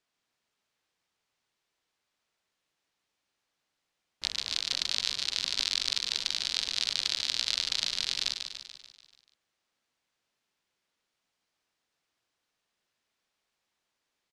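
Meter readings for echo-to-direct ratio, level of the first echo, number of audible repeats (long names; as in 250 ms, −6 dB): −5.5 dB, −7.0 dB, 6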